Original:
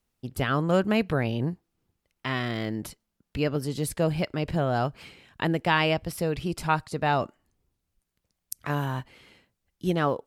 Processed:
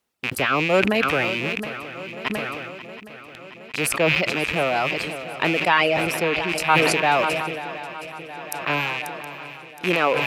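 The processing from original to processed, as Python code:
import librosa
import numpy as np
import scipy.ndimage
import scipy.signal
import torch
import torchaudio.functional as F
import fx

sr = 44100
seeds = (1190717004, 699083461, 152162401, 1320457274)

p1 = fx.rattle_buzz(x, sr, strikes_db=-39.0, level_db=-18.0)
p2 = fx.highpass(p1, sr, hz=170.0, slope=6)
p3 = fx.bass_treble(p2, sr, bass_db=-8, treble_db=-3)
p4 = fx.gate_flip(p3, sr, shuts_db=-34.0, range_db=-41, at=(2.28, 3.74))
p5 = fx.high_shelf(p4, sr, hz=4400.0, db=-7.5, at=(5.68, 6.49))
p6 = fx.dereverb_blind(p5, sr, rt60_s=1.2)
p7 = p6 + fx.echo_swing(p6, sr, ms=718, ratio=3, feedback_pct=66, wet_db=-15, dry=0)
p8 = fx.sustainer(p7, sr, db_per_s=28.0)
y = p8 * librosa.db_to_amplitude(6.0)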